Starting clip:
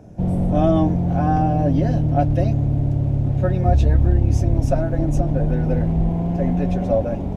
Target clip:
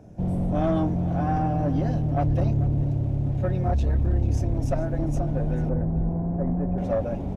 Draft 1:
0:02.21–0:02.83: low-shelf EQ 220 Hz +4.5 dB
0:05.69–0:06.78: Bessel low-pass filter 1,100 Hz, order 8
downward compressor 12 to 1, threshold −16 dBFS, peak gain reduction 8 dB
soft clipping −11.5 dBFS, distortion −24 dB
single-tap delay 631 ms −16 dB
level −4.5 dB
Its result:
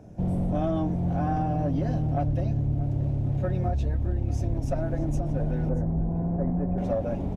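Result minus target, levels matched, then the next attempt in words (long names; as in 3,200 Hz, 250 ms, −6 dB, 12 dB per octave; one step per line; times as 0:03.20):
echo 191 ms late; downward compressor: peak gain reduction +8 dB
0:02.21–0:02.83: low-shelf EQ 220 Hz +4.5 dB
0:05.69–0:06.78: Bessel low-pass filter 1,100 Hz, order 8
soft clipping −11.5 dBFS, distortion −16 dB
single-tap delay 440 ms −16 dB
level −4.5 dB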